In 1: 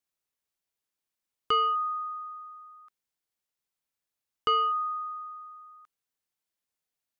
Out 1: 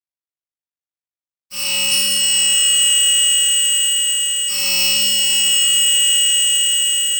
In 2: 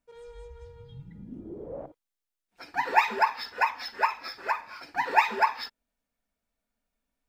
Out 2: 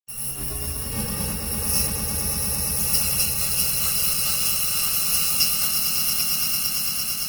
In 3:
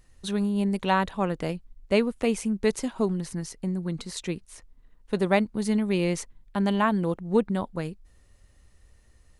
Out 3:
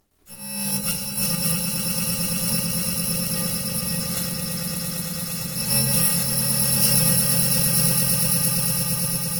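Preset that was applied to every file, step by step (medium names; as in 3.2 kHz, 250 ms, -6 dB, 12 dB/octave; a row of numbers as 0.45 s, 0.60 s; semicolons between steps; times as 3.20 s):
bit-reversed sample order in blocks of 128 samples; high-pass 62 Hz 12 dB/octave; treble shelf 3 kHz +2.5 dB; hum notches 50/100/150 Hz; slow attack 448 ms; in parallel at -2 dB: compression 6:1, threshold -39 dBFS; on the sum: dynamic bell 1.2 kHz, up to -3 dB, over -48 dBFS, Q 0.94; crossover distortion -52.5 dBFS; on a send: echo with a slow build-up 113 ms, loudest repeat 8, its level -7.5 dB; on the sum: simulated room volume 56 m³, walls mixed, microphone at 1 m; Opus 16 kbps 48 kHz; peak normalisation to -3 dBFS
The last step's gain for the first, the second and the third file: +8.0 dB, +8.0 dB, -1.0 dB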